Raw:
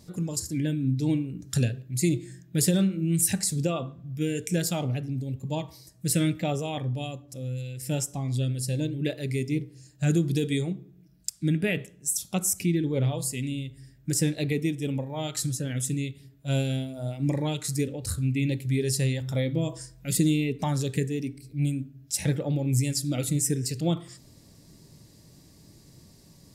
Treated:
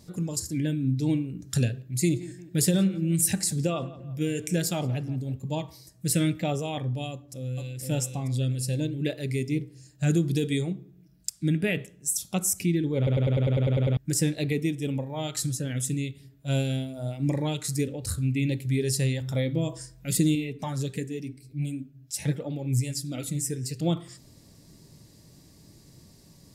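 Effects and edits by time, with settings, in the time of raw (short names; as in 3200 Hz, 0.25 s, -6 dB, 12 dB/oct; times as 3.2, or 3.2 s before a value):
1.89–5.37 tape echo 0.174 s, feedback 52%, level -16 dB, low-pass 2200 Hz
7.1–7.8 echo throw 0.47 s, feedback 35%, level -4 dB
12.97 stutter in place 0.10 s, 10 plays
20.35–23.8 flange 1.4 Hz, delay 2.8 ms, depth 6.7 ms, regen +38%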